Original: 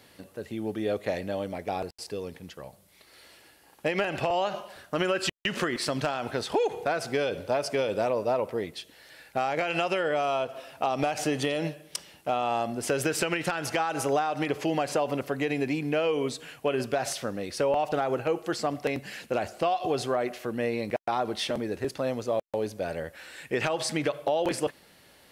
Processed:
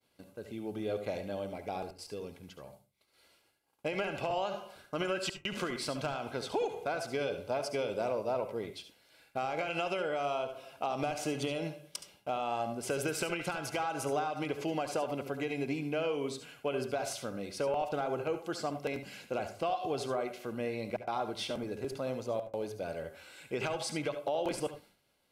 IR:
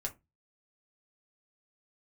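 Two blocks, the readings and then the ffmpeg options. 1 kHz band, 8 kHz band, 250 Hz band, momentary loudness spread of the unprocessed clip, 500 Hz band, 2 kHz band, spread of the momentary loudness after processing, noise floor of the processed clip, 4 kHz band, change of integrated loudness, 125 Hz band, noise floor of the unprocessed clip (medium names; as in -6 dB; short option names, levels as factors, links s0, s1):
-6.5 dB, -6.5 dB, -6.5 dB, 9 LU, -6.5 dB, -7.5 dB, 9 LU, -71 dBFS, -6.5 dB, -6.5 dB, -6.0 dB, -58 dBFS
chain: -filter_complex "[0:a]asuperstop=centerf=1800:order=8:qfactor=7.3,agate=range=0.0224:threshold=0.00398:ratio=3:detection=peak,asplit=2[s0][s1];[1:a]atrim=start_sample=2205,adelay=70[s2];[s1][s2]afir=irnorm=-1:irlink=0,volume=0.335[s3];[s0][s3]amix=inputs=2:normalize=0,volume=0.447"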